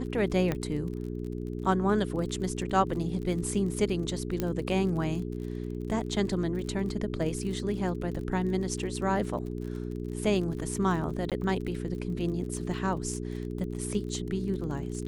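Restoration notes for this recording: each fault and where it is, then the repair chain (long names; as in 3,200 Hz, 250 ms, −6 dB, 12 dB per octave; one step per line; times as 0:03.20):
surface crackle 38 per second −37 dBFS
mains hum 60 Hz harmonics 7 −35 dBFS
0:00.52: click −16 dBFS
0:04.40: click −15 dBFS
0:11.30–0:11.32: drop-out 17 ms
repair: click removal
hum removal 60 Hz, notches 7
repair the gap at 0:11.30, 17 ms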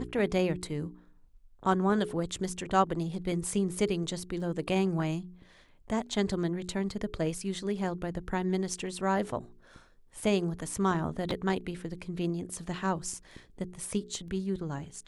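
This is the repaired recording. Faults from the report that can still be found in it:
0:04.40: click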